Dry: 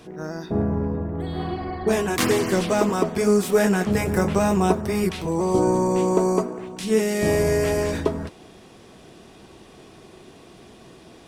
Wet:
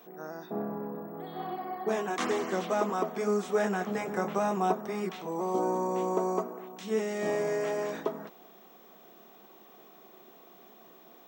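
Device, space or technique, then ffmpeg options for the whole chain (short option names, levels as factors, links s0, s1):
old television with a line whistle: -af "highpass=f=200:w=0.5412,highpass=f=200:w=1.3066,equalizer=f=290:t=q:w=4:g=-5,equalizer=f=750:t=q:w=4:g=6,equalizer=f=1200:t=q:w=4:g=5,equalizer=f=2600:t=q:w=4:g=-3,equalizer=f=4700:t=q:w=4:g=-8,lowpass=f=7000:w=0.5412,lowpass=f=7000:w=1.3066,aeval=exprs='val(0)+0.00447*sin(2*PI*15734*n/s)':c=same,volume=0.355"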